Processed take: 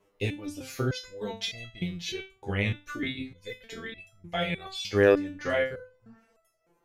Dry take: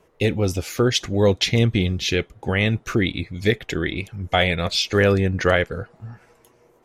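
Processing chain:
mains-hum notches 50/100/150/200/250 Hz
step-sequenced resonator 3.3 Hz 100–660 Hz
level +1.5 dB

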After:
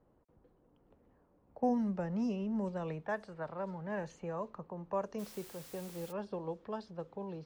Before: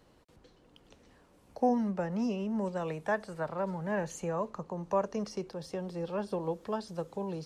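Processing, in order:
low-pass that shuts in the quiet parts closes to 1,000 Hz, open at −26 dBFS
0:01.63–0:03.02: low-shelf EQ 230 Hz +7.5 dB
0:05.18–0:06.11: background noise white −48 dBFS
level −6 dB

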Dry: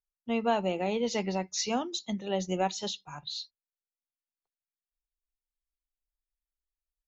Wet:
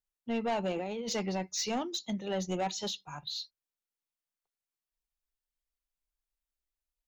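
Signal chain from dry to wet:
0:00.72–0:01.13: compressor whose output falls as the input rises −35 dBFS, ratio −1
soft clipping −25.5 dBFS, distortion −11 dB

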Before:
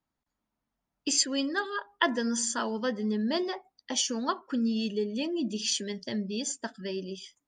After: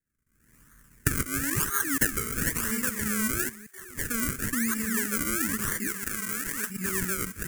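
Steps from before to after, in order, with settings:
delay that plays each chunk backwards 282 ms, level −4 dB
camcorder AGC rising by 55 dB per second
0:01.57–0:02.57: comb filter 6.4 ms, depth 77%
sample-and-hold swept by an LFO 34×, swing 100% 1 Hz
0:05.87–0:06.70: low-shelf EQ 280 Hz −12 dB
delay with a high-pass on its return 65 ms, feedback 85%, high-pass 1,500 Hz, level −23.5 dB
0:03.49–0:03.98: output level in coarse steps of 20 dB
drawn EQ curve 120 Hz 0 dB, 440 Hz −9 dB, 760 Hz −25 dB, 1,100 Hz −5 dB, 1,700 Hz +7 dB, 3,700 Hz −11 dB, 7,200 Hz +10 dB, 10,000 Hz +13 dB
level −3 dB

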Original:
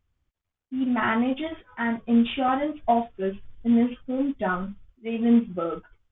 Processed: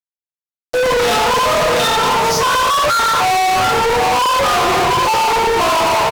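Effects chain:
pitch shifter +11.5 semitones
octave-band graphic EQ 125/250/500/1,000/2,000 Hz +4/+3/−3/+11/−6 dB
on a send: multi-tap delay 119/714 ms −18.5/−13 dB
on the sum: noise gate with hold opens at −37 dBFS
convolution reverb RT60 1.1 s, pre-delay 3 ms, DRR −16 dB
in parallel at +2 dB: compressor whose output falls as the input rises −15 dBFS
on the sum: parametric band 750 Hz +11 dB 1.5 octaves
notch filter 450 Hz, Q 12
all-pass dispersion lows, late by 51 ms, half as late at 1,800 Hz
fuzz pedal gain 24 dB, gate −20 dBFS
linearly interpolated sample-rate reduction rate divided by 2×

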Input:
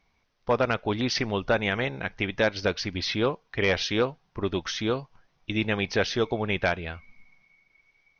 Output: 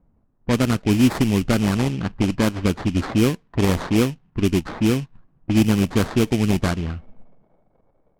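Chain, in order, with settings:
low shelf with overshoot 380 Hz +11 dB, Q 1.5
sample-rate reduction 2,800 Hz, jitter 20%
low-pass that shuts in the quiet parts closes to 1,000 Hz, open at −13.5 dBFS

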